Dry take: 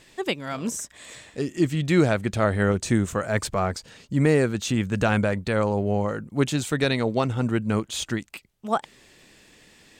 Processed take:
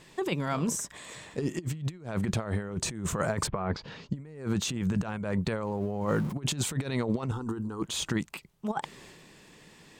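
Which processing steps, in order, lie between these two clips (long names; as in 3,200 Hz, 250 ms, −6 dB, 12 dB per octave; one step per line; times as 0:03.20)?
0:05.64–0:06.33: converter with a step at zero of −41 dBFS
transient designer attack +1 dB, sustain +5 dB
graphic EQ with 15 bands 160 Hz +9 dB, 400 Hz +4 dB, 1,000 Hz +7 dB
compressor whose output falls as the input rises −22 dBFS, ratio −0.5
0:03.46–0:04.14: low-pass filter 2,700 Hz → 6,600 Hz 24 dB per octave
0:07.31–0:07.82: phaser with its sweep stopped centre 600 Hz, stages 6
level −7.5 dB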